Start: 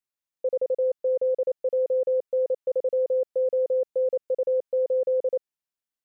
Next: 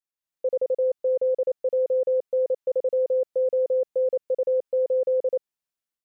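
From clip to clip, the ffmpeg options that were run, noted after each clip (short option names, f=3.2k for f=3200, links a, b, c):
-af "dynaudnorm=f=160:g=3:m=7.5dB,volume=-6.5dB"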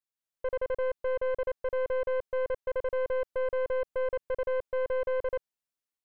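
-af "aeval=exprs='(tanh(17.8*val(0)+0.5)-tanh(0.5))/17.8':c=same,volume=-1.5dB"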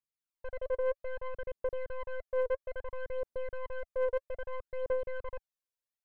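-af "aphaser=in_gain=1:out_gain=1:delay=2.1:decay=0.65:speed=0.61:type=triangular,volume=-8.5dB"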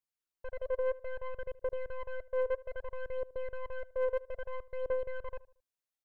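-filter_complex "[0:a]asplit=2[a][b];[b]adelay=76,lowpass=f=1.7k:p=1,volume=-19dB,asplit=2[c][d];[d]adelay=76,lowpass=f=1.7k:p=1,volume=0.41,asplit=2[e][f];[f]adelay=76,lowpass=f=1.7k:p=1,volume=0.41[g];[a][c][e][g]amix=inputs=4:normalize=0,volume=-1dB"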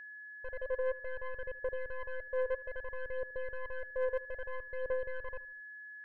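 -af "aeval=exprs='val(0)+0.00631*sin(2*PI*1700*n/s)':c=same,volume=-2dB"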